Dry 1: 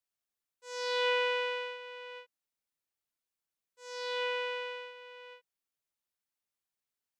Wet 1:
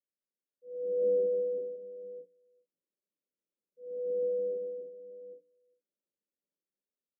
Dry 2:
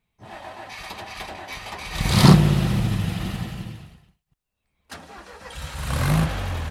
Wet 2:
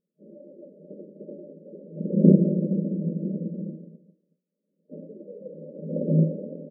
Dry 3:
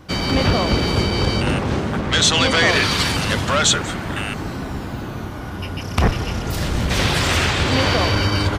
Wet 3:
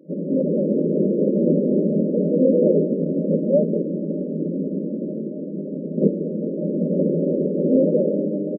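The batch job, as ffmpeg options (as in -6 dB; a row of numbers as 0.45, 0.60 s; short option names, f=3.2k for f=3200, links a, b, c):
-filter_complex "[0:a]aresample=8000,acrusher=bits=2:mode=log:mix=0:aa=0.000001,aresample=44100,asplit=2[a][b];[b]adelay=400,highpass=300,lowpass=3.4k,asoftclip=type=hard:threshold=-10dB,volume=-25dB[c];[a][c]amix=inputs=2:normalize=0,afftfilt=real='re*between(b*sr/4096,160,620)':imag='im*between(b*sr/4096,160,620)':win_size=4096:overlap=0.75,dynaudnorm=f=150:g=13:m=6dB,bandreject=f=60:t=h:w=6,bandreject=f=120:t=h:w=6,bandreject=f=180:t=h:w=6,bandreject=f=240:t=h:w=6,bandreject=f=300:t=h:w=6"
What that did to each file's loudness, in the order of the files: +0.5, -3.0, -2.5 LU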